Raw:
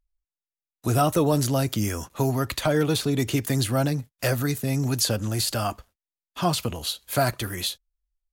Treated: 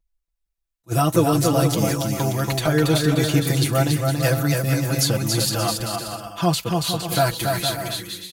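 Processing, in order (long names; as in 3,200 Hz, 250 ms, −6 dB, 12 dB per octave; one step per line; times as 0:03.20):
comb filter 6 ms, depth 84%
bouncing-ball delay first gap 280 ms, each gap 0.65×, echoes 5
level that may rise only so fast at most 580 dB per second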